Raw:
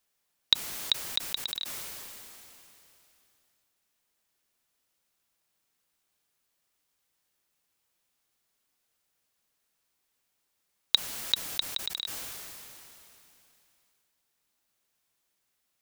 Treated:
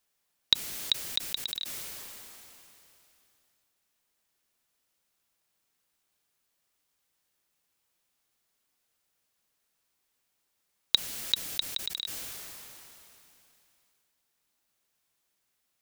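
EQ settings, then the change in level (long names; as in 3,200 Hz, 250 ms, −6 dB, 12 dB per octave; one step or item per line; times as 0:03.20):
dynamic equaliser 1,000 Hz, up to −6 dB, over −52 dBFS, Q 1
0.0 dB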